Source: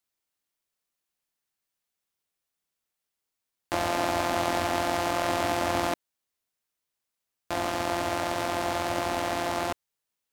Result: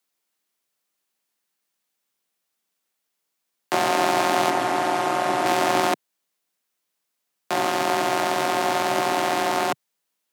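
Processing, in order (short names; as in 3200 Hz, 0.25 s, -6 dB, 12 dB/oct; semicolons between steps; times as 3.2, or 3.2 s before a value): 4.5–5.46 delta modulation 64 kbps, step -41 dBFS; HPF 120 Hz 24 dB/oct; frequency shift +30 Hz; gain +6.5 dB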